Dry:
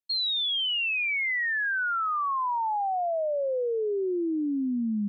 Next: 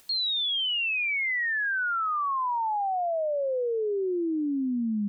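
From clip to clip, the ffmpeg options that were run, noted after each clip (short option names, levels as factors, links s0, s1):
-af "acompressor=mode=upward:threshold=0.0282:ratio=2.5"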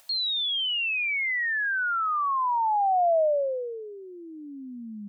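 -af "lowshelf=f=490:t=q:w=3:g=-8.5"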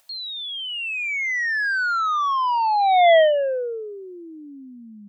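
-af "dynaudnorm=f=340:g=7:m=3.98,aeval=exprs='0.501*(cos(1*acos(clip(val(0)/0.501,-1,1)))-cos(1*PI/2))+0.158*(cos(3*acos(clip(val(0)/0.501,-1,1)))-cos(3*PI/2))+0.0708*(cos(5*acos(clip(val(0)/0.501,-1,1)))-cos(5*PI/2))':c=same,volume=0.794"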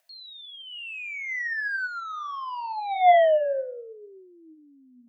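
-af "flanger=delay=6:depth=9.5:regen=74:speed=0.72:shape=triangular,afreqshift=32,superequalizer=7b=1.58:8b=3.16:11b=2:12b=1.41,volume=0.398"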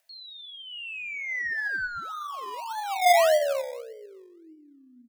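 -filter_complex "[0:a]asplit=2[s0][s1];[s1]adelay=207,lowpass=f=1100:p=1,volume=0.178,asplit=2[s2][s3];[s3]adelay=207,lowpass=f=1100:p=1,volume=0.28,asplit=2[s4][s5];[s5]adelay=207,lowpass=f=1100:p=1,volume=0.28[s6];[s0][s2][s4][s6]amix=inputs=4:normalize=0,acrossover=split=590|860|2500[s7][s8][s9][s10];[s8]acrusher=samples=24:mix=1:aa=0.000001:lfo=1:lforange=14.4:lforate=1.7[s11];[s7][s11][s9][s10]amix=inputs=4:normalize=0"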